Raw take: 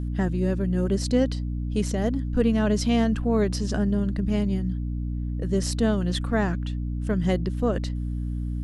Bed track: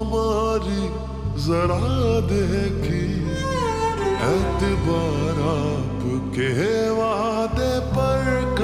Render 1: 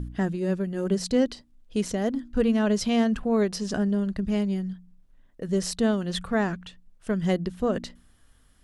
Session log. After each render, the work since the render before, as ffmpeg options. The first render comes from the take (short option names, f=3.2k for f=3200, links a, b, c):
-af "bandreject=f=60:t=h:w=4,bandreject=f=120:t=h:w=4,bandreject=f=180:t=h:w=4,bandreject=f=240:t=h:w=4,bandreject=f=300:t=h:w=4"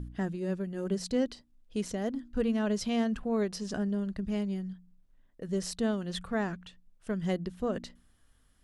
-af "volume=-6.5dB"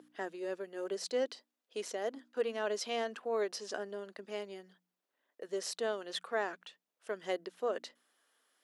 -af "highpass=f=390:w=0.5412,highpass=f=390:w=1.3066,equalizer=f=9.1k:t=o:w=0.77:g=-3.5"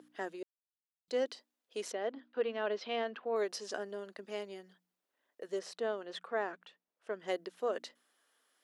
-filter_complex "[0:a]asettb=1/sr,asplit=3[a][b][c];[a]atrim=end=1.924[d];[b]atrim=start=1.92:end=3.36,asetpts=PTS-STARTPTS,afade=t=in:d=0.004:c=qsin,afade=t=out:st=1.436:d=0.004:c=qsin,lowpass=f=3.9k:w=0.5412,lowpass=f=3.9k:w=1.3066[e];[c]atrim=start=3.356[f];[d][e]acrossfade=d=0.004:c1=hsin:c2=qsin[g];[g][f]acrossfade=d=0.004:c1=qsin:c2=hsin,asettb=1/sr,asplit=3[h][i][j];[h]atrim=end=5.594[k];[i]atrim=start=5.59:end=7.28,asetpts=PTS-STARTPTS,afade=t=in:d=0.004:c=qsin,afade=t=out:st=1.686:d=0.004:c=qsin,lowpass=f=2k:p=1[l];[j]atrim=start=7.276[m];[k][l]acrossfade=d=0.004:c1=hsin:c2=qsin[n];[n][m]acrossfade=d=0.004:c1=qsin:c2=hsin,asplit=3[o][p][q];[o]atrim=end=0.43,asetpts=PTS-STARTPTS,afade=t=out:st=0.426:d=0.004:c=hsin[r];[p]atrim=start=0.43:end=1.08,asetpts=PTS-STARTPTS,volume=0[s];[q]atrim=start=1.08,asetpts=PTS-STARTPTS,afade=t=in:d=0.004:c=hsin[t];[r][s][t]concat=n=3:v=0:a=1"